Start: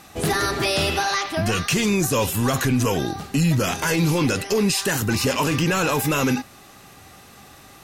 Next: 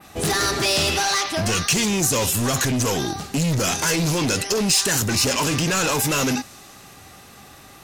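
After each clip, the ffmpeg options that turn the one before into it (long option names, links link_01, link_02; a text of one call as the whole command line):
ffmpeg -i in.wav -af "volume=20dB,asoftclip=hard,volume=-20dB,adynamicequalizer=threshold=0.00708:dfrequency=6500:dqfactor=0.75:tfrequency=6500:tqfactor=0.75:attack=5:release=100:ratio=0.375:range=4:mode=boostabove:tftype=bell,volume=1dB" out.wav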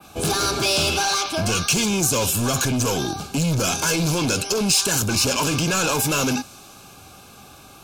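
ffmpeg -i in.wav -filter_complex "[0:a]asuperstop=centerf=1900:order=8:qfactor=4.9,acrossover=split=220|570|7600[link_01][link_02][link_03][link_04];[link_02]volume=23.5dB,asoftclip=hard,volume=-23.5dB[link_05];[link_01][link_05][link_03][link_04]amix=inputs=4:normalize=0" out.wav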